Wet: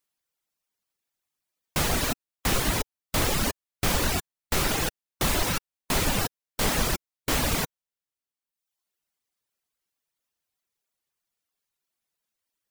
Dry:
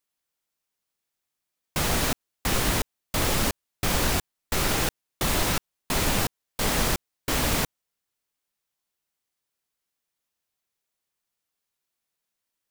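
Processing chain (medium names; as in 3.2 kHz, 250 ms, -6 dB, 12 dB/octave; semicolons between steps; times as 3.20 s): reverb removal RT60 1 s; trim +1 dB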